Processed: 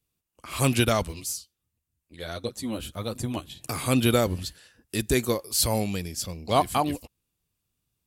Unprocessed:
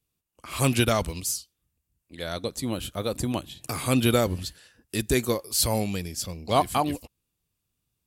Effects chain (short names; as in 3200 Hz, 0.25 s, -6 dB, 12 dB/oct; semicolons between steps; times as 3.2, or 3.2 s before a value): 1.04–3.5 chorus voices 2, 1.4 Hz, delay 11 ms, depth 3 ms